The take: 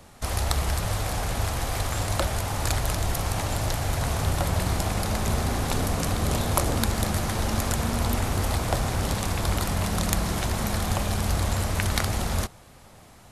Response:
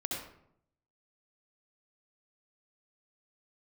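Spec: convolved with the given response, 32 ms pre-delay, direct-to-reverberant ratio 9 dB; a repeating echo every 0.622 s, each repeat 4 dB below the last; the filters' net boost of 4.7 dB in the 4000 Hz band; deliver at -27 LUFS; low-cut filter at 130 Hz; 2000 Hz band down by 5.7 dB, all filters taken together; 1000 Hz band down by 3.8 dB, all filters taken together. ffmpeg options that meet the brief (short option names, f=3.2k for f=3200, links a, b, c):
-filter_complex "[0:a]highpass=130,equalizer=f=1k:t=o:g=-3.5,equalizer=f=2k:t=o:g=-8.5,equalizer=f=4k:t=o:g=8,aecho=1:1:622|1244|1866|2488|3110|3732|4354|4976|5598:0.631|0.398|0.25|0.158|0.0994|0.0626|0.0394|0.0249|0.0157,asplit=2[a][b];[1:a]atrim=start_sample=2205,adelay=32[c];[b][c]afir=irnorm=-1:irlink=0,volume=-12dB[d];[a][d]amix=inputs=2:normalize=0,volume=-1.5dB"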